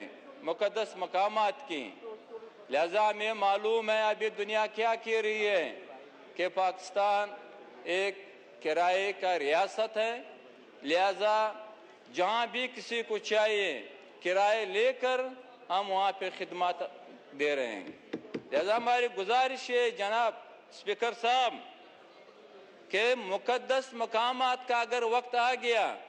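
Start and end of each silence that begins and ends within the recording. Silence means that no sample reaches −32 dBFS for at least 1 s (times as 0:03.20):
0:21.52–0:22.93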